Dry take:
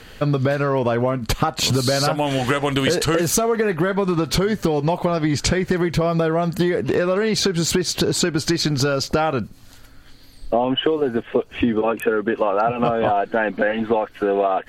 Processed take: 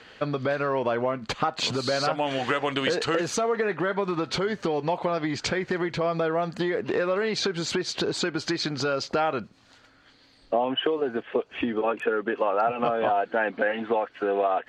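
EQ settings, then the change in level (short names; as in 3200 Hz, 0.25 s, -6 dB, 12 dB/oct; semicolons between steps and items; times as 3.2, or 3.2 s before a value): HPF 460 Hz 6 dB/oct; air absorption 120 m; -2.5 dB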